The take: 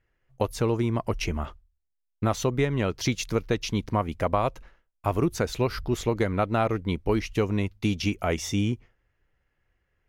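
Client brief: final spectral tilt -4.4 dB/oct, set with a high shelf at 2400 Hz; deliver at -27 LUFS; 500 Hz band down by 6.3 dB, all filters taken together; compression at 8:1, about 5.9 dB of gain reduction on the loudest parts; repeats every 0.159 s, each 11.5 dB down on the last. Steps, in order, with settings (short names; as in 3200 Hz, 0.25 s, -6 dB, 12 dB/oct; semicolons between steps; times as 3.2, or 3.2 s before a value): bell 500 Hz -8.5 dB; high shelf 2400 Hz +4.5 dB; compressor 8:1, threshold -27 dBFS; feedback echo 0.159 s, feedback 27%, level -11.5 dB; gain +6 dB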